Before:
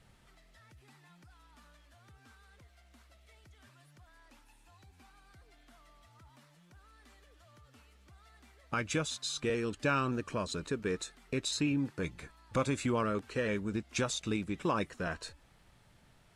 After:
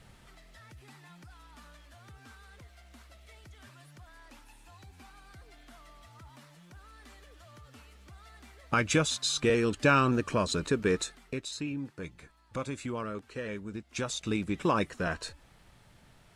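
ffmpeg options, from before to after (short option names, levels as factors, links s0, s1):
-af "volume=6.31,afade=t=out:st=11.01:d=0.41:silence=0.266073,afade=t=in:st=13.87:d=0.64:silence=0.354813"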